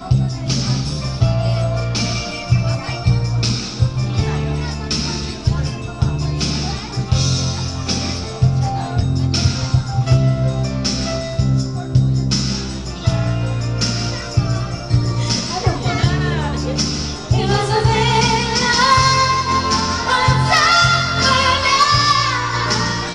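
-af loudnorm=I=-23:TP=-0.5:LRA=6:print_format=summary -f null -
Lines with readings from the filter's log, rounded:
Input Integrated:    -16.6 LUFS
Input True Peak:      -3.9 dBTP
Input LRA:             6.1 LU
Input Threshold:     -26.6 LUFS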